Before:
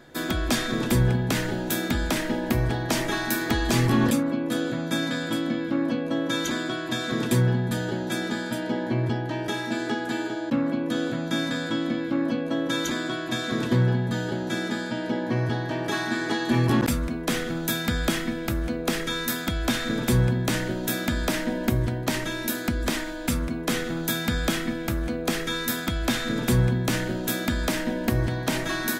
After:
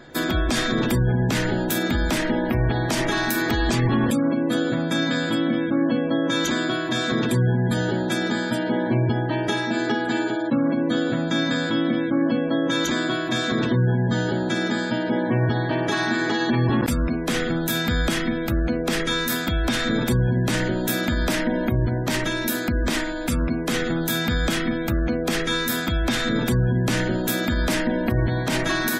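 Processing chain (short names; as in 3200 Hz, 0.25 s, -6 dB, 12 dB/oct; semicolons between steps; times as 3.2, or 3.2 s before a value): limiter -18 dBFS, peak gain reduction 6.5 dB; spectral gate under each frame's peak -30 dB strong; gain +5.5 dB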